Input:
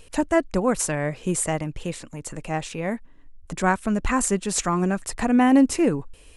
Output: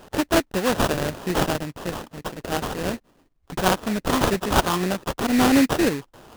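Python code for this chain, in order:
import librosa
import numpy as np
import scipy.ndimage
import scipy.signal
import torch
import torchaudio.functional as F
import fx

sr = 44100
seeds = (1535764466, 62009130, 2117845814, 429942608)

y = fx.weighting(x, sr, curve='D')
y = fx.sample_hold(y, sr, seeds[0], rate_hz=2200.0, jitter_pct=20)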